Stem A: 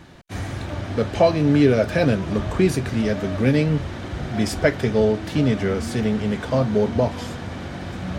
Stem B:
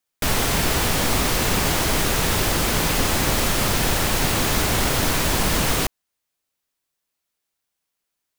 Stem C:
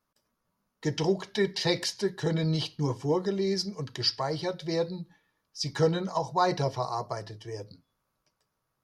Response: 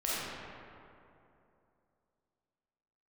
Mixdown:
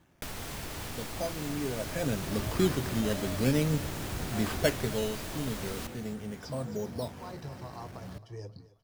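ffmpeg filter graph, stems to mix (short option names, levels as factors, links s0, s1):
-filter_complex "[0:a]acrusher=samples=9:mix=1:aa=0.000001:lfo=1:lforange=9:lforate=0.43,volume=0.376,afade=t=in:st=1.76:d=0.7:silence=0.298538,afade=t=out:st=4.69:d=0.4:silence=0.421697,asplit=3[s0][s1][s2];[s1]volume=0.0891[s3];[1:a]volume=0.299,asplit=2[s4][s5];[s5]volume=0.0668[s6];[2:a]lowshelf=f=170:g=11.5,alimiter=limit=0.0944:level=0:latency=1:release=450,adelay=850,volume=0.596,asplit=2[s7][s8];[s8]volume=0.0891[s9];[s2]apad=whole_len=427235[s10];[s7][s10]sidechaincompress=threshold=0.00447:ratio=8:attack=16:release=473[s11];[s4][s11]amix=inputs=2:normalize=0,acompressor=threshold=0.0141:ratio=6,volume=1[s12];[s3][s6][s9]amix=inputs=3:normalize=0,aecho=0:1:266|532|798|1064|1330|1596:1|0.41|0.168|0.0689|0.0283|0.0116[s13];[s0][s12][s13]amix=inputs=3:normalize=0"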